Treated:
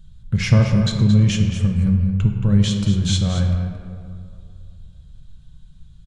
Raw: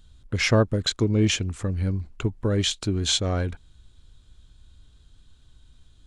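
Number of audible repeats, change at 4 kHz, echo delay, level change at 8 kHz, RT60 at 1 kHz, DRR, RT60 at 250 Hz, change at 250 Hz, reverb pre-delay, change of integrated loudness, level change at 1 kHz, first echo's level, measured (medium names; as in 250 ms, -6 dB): 1, -1.5 dB, 224 ms, -2.0 dB, 2.4 s, 2.0 dB, 2.4 s, +7.5 dB, 5 ms, +6.0 dB, -1.0 dB, -10.0 dB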